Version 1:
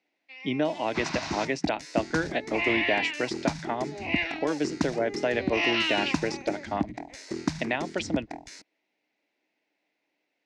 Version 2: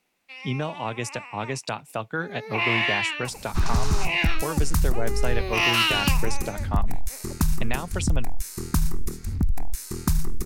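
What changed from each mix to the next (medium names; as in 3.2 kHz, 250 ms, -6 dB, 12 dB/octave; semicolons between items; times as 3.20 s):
first sound +6.5 dB; second sound: entry +2.60 s; master: remove cabinet simulation 240–5500 Hz, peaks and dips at 300 Hz +10 dB, 630 Hz +6 dB, 1.2 kHz -8 dB, 2 kHz +6 dB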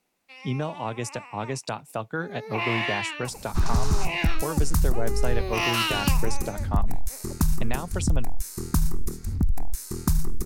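master: add peaking EQ 2.5 kHz -5.5 dB 1.5 oct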